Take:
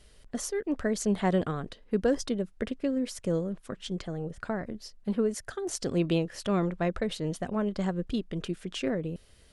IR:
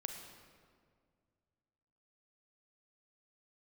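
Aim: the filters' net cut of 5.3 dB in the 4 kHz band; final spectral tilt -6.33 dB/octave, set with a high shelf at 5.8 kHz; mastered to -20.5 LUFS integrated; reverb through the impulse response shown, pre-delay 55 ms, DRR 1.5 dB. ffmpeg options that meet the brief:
-filter_complex "[0:a]equalizer=f=4000:t=o:g=-5,highshelf=f=5800:g=-6.5,asplit=2[s0][s1];[1:a]atrim=start_sample=2205,adelay=55[s2];[s1][s2]afir=irnorm=-1:irlink=0,volume=1[s3];[s0][s3]amix=inputs=2:normalize=0,volume=2.66"

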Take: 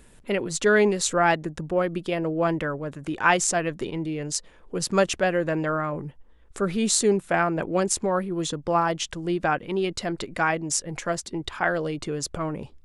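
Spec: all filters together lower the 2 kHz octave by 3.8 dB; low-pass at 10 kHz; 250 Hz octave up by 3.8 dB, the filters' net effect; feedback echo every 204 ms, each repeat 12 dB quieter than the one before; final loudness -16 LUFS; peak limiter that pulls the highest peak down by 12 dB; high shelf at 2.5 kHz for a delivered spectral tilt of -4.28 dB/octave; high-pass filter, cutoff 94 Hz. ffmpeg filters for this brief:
-af "highpass=94,lowpass=10000,equalizer=f=250:t=o:g=6,equalizer=f=2000:t=o:g=-8.5,highshelf=f=2500:g=6.5,alimiter=limit=0.224:level=0:latency=1,aecho=1:1:204|408|612:0.251|0.0628|0.0157,volume=2.66"

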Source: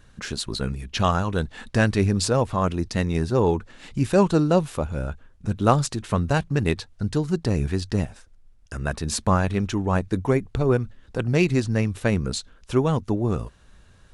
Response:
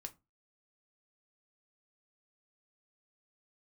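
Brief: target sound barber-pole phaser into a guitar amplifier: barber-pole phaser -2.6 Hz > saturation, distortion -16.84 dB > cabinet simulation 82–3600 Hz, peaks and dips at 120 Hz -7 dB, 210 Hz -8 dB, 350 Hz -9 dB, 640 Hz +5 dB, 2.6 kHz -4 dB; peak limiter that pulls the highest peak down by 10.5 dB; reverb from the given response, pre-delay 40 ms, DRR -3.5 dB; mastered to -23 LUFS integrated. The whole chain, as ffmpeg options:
-filter_complex "[0:a]alimiter=limit=0.211:level=0:latency=1,asplit=2[s0][s1];[1:a]atrim=start_sample=2205,adelay=40[s2];[s1][s2]afir=irnorm=-1:irlink=0,volume=2.51[s3];[s0][s3]amix=inputs=2:normalize=0,asplit=2[s4][s5];[s5]afreqshift=-2.6[s6];[s4][s6]amix=inputs=2:normalize=1,asoftclip=threshold=0.178,highpass=82,equalizer=f=120:t=q:w=4:g=-7,equalizer=f=210:t=q:w=4:g=-8,equalizer=f=350:t=q:w=4:g=-9,equalizer=f=640:t=q:w=4:g=5,equalizer=f=2600:t=q:w=4:g=-4,lowpass=f=3600:w=0.5412,lowpass=f=3600:w=1.3066,volume=2"

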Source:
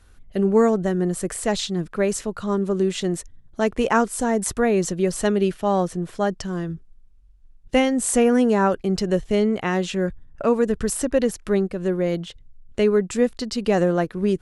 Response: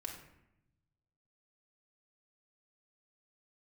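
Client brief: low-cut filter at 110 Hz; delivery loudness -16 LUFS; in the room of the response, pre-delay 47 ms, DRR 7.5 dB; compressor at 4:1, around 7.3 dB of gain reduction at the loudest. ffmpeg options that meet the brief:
-filter_complex "[0:a]highpass=110,acompressor=threshold=0.0794:ratio=4,asplit=2[s0][s1];[1:a]atrim=start_sample=2205,adelay=47[s2];[s1][s2]afir=irnorm=-1:irlink=0,volume=0.531[s3];[s0][s3]amix=inputs=2:normalize=0,volume=3.35"

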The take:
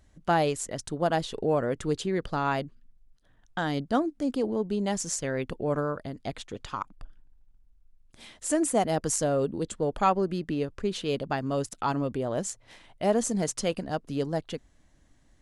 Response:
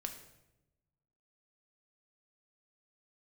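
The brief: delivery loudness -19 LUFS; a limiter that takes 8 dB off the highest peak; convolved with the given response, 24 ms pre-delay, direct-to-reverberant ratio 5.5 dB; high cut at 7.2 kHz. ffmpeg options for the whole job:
-filter_complex "[0:a]lowpass=7200,alimiter=limit=0.112:level=0:latency=1,asplit=2[s0][s1];[1:a]atrim=start_sample=2205,adelay=24[s2];[s1][s2]afir=irnorm=-1:irlink=0,volume=0.631[s3];[s0][s3]amix=inputs=2:normalize=0,volume=3.55"

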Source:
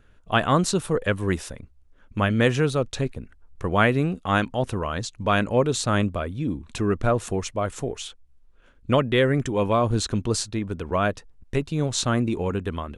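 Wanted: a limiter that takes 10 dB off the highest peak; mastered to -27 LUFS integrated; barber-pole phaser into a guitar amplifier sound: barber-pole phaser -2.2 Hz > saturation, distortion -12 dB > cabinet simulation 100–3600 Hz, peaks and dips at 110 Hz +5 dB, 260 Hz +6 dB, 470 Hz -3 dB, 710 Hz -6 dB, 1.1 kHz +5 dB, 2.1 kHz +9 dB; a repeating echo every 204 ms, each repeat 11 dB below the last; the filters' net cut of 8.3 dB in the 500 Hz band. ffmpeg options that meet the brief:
-filter_complex "[0:a]equalizer=f=500:t=o:g=-8,alimiter=limit=0.133:level=0:latency=1,aecho=1:1:204|408|612:0.282|0.0789|0.0221,asplit=2[s0][s1];[s1]afreqshift=-2.2[s2];[s0][s2]amix=inputs=2:normalize=1,asoftclip=threshold=0.0398,highpass=100,equalizer=f=110:t=q:w=4:g=5,equalizer=f=260:t=q:w=4:g=6,equalizer=f=470:t=q:w=4:g=-3,equalizer=f=710:t=q:w=4:g=-6,equalizer=f=1100:t=q:w=4:g=5,equalizer=f=2100:t=q:w=4:g=9,lowpass=f=3600:w=0.5412,lowpass=f=3600:w=1.3066,volume=2.24"

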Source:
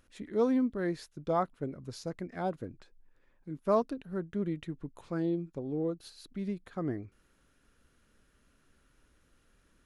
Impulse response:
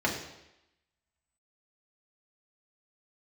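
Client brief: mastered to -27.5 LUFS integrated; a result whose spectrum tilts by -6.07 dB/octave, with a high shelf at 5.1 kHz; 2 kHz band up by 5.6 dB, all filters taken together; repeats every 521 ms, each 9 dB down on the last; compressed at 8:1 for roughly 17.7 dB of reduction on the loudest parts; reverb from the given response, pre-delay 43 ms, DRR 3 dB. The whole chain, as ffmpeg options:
-filter_complex "[0:a]equalizer=f=2000:t=o:g=8,highshelf=f=5100:g=-6.5,acompressor=threshold=0.00891:ratio=8,aecho=1:1:521|1042|1563|2084:0.355|0.124|0.0435|0.0152,asplit=2[s0][s1];[1:a]atrim=start_sample=2205,adelay=43[s2];[s1][s2]afir=irnorm=-1:irlink=0,volume=0.2[s3];[s0][s3]amix=inputs=2:normalize=0,volume=6.68"

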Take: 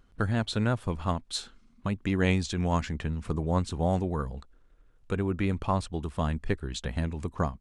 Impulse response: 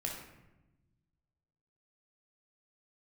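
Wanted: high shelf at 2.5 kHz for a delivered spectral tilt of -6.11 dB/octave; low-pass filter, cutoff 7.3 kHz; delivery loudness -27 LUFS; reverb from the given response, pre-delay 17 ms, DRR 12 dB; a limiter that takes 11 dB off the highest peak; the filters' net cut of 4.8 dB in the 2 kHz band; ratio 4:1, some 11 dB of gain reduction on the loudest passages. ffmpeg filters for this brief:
-filter_complex "[0:a]lowpass=7300,equalizer=f=2000:t=o:g=-4,highshelf=f=2500:g=-5,acompressor=threshold=0.0178:ratio=4,alimiter=level_in=3.35:limit=0.0631:level=0:latency=1,volume=0.299,asplit=2[s0][s1];[1:a]atrim=start_sample=2205,adelay=17[s2];[s1][s2]afir=irnorm=-1:irlink=0,volume=0.211[s3];[s0][s3]amix=inputs=2:normalize=0,volume=7.94"

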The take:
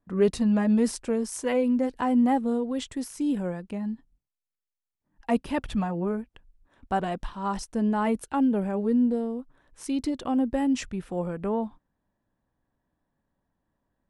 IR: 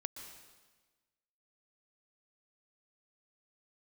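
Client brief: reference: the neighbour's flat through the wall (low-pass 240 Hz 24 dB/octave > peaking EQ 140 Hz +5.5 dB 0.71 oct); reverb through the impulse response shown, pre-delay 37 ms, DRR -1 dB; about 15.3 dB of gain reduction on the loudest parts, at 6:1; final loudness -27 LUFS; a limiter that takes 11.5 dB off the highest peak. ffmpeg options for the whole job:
-filter_complex "[0:a]acompressor=threshold=0.0178:ratio=6,alimiter=level_in=3.16:limit=0.0631:level=0:latency=1,volume=0.316,asplit=2[s0][s1];[1:a]atrim=start_sample=2205,adelay=37[s2];[s1][s2]afir=irnorm=-1:irlink=0,volume=1.41[s3];[s0][s3]amix=inputs=2:normalize=0,lowpass=f=240:w=0.5412,lowpass=f=240:w=1.3066,equalizer=f=140:t=o:w=0.71:g=5.5,volume=5.31"

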